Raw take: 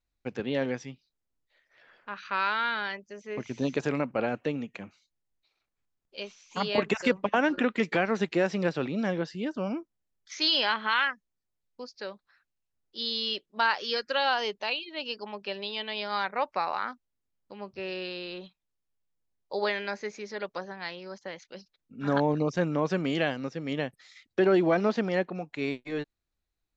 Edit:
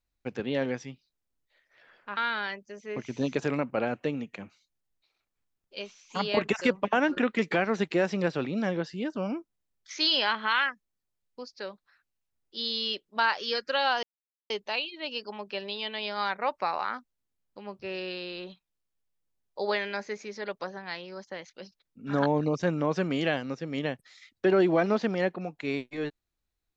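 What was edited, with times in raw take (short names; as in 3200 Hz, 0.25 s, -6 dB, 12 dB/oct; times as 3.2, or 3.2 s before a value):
2.17–2.58 cut
14.44 insert silence 0.47 s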